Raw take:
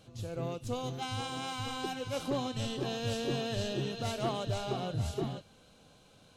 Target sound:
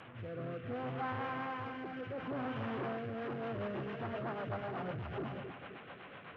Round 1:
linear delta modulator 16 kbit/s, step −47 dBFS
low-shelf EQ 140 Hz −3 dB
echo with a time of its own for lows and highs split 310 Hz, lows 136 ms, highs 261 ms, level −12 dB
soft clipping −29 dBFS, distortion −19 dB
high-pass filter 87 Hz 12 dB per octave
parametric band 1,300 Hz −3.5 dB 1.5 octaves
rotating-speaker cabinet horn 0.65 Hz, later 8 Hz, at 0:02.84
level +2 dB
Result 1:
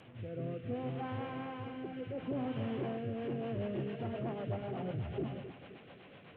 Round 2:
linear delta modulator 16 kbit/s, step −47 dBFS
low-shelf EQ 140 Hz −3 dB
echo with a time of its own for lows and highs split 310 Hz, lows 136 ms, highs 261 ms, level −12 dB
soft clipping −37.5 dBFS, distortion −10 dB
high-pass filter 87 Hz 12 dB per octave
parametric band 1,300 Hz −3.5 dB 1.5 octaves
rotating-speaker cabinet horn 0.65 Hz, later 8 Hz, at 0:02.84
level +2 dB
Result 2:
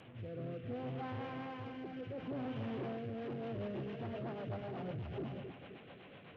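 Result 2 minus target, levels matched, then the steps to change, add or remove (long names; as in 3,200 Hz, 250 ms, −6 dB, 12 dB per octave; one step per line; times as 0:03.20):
1,000 Hz band −4.5 dB
change: parametric band 1,300 Hz +7.5 dB 1.5 octaves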